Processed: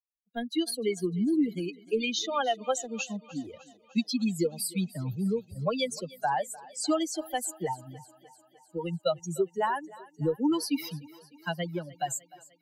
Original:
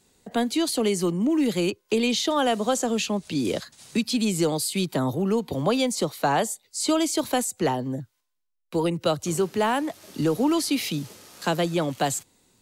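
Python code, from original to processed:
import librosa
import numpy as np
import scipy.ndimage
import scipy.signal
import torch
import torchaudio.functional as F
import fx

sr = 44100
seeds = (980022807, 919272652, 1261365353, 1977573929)

y = fx.bin_expand(x, sr, power=3.0)
y = fx.echo_thinned(y, sr, ms=302, feedback_pct=65, hz=220.0, wet_db=-20.0)
y = F.gain(torch.from_numpy(y), 1.0).numpy()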